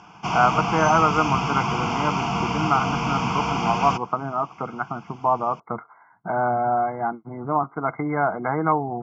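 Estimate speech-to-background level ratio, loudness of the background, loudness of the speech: 1.0 dB, −25.0 LKFS, −24.0 LKFS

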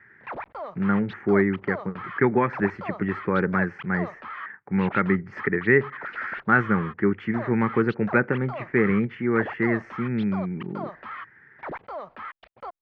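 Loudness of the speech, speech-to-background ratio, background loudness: −24.5 LKFS, 14.0 dB, −38.5 LKFS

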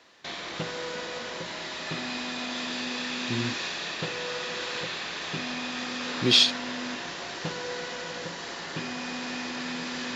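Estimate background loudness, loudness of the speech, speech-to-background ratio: −32.5 LKFS, −22.5 LKFS, 10.0 dB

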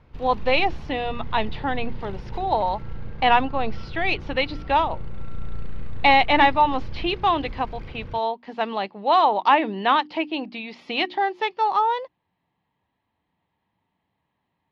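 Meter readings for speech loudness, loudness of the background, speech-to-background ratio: −22.5 LKFS, −39.0 LKFS, 16.5 dB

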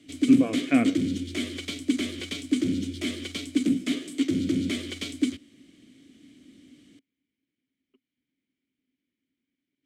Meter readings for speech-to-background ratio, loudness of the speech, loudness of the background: 5.0 dB, −23.5 LKFS, −28.5 LKFS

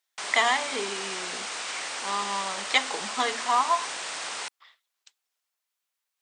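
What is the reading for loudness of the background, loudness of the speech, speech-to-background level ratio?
−32.5 LKFS, −27.5 LKFS, 5.0 dB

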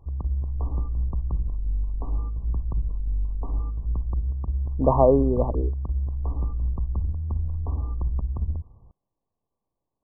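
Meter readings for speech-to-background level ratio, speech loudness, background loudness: 8.0 dB, −21.5 LKFS, −29.5 LKFS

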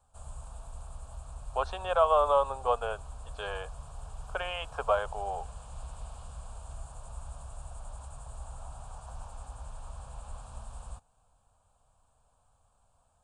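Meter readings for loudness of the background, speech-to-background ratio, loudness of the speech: −46.5 LKFS, 16.5 dB, −30.0 LKFS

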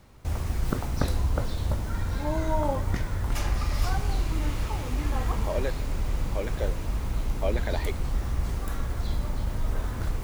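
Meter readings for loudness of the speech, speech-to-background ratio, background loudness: −35.0 LKFS, −4.5 dB, −30.5 LKFS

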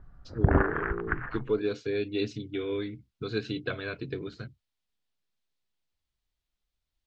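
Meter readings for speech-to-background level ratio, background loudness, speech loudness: −4.5 dB, −29.0 LKFS, −33.5 LKFS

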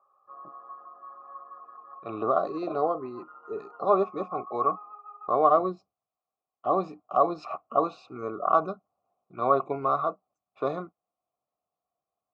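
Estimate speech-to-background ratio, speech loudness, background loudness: 18.0 dB, −27.5 LKFS, −45.5 LKFS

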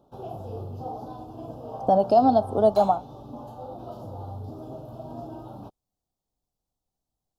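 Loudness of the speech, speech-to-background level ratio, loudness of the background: −21.5 LKFS, 16.5 dB, −38.0 LKFS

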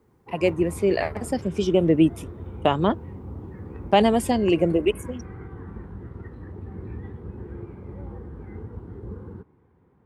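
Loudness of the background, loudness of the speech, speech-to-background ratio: −38.5 LKFS, −22.5 LKFS, 16.0 dB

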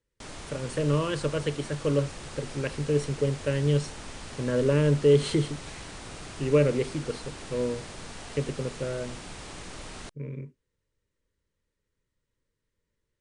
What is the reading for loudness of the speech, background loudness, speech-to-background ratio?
−27.5 LKFS, −41.5 LKFS, 14.0 dB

